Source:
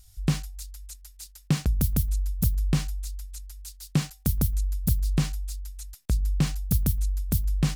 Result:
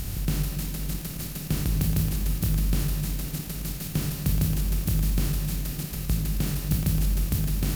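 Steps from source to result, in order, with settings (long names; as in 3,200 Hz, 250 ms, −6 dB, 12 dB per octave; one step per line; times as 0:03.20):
compressor on every frequency bin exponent 0.2
notch filter 1,100 Hz, Q 13
on a send: convolution reverb RT60 4.7 s, pre-delay 7 ms, DRR 3 dB
on the sum: level −7 dB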